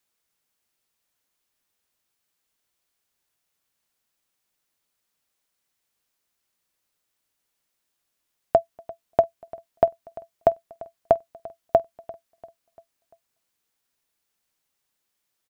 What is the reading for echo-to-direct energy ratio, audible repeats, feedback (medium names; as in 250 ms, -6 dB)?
-19.5 dB, 3, 48%